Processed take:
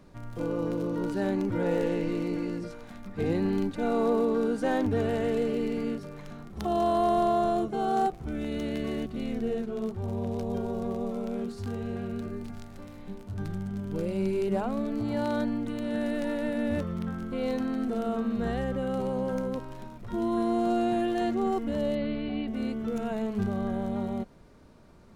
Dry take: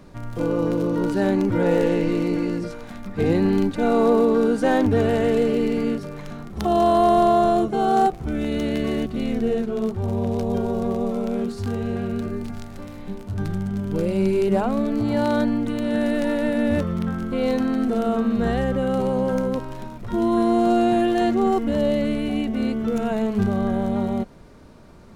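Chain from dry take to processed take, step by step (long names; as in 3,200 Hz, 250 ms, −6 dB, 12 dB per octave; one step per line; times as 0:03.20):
0:21.95–0:22.48: linear-phase brick-wall low-pass 5,000 Hz
level −8 dB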